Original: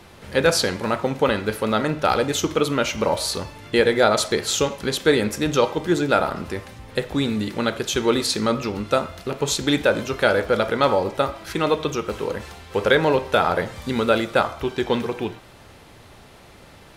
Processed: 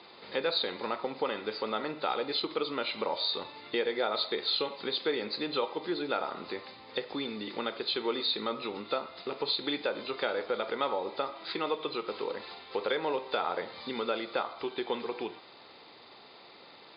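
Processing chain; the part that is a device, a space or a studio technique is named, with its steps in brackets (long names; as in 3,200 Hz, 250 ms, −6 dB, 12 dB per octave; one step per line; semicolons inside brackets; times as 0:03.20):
hearing aid with frequency lowering (hearing-aid frequency compression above 3,500 Hz 4 to 1; downward compressor 2 to 1, threshold −27 dBFS, peak gain reduction 9 dB; loudspeaker in its box 380–5,600 Hz, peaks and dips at 610 Hz −5 dB, 1,600 Hz −7 dB, 2,900 Hz −3 dB)
level −2.5 dB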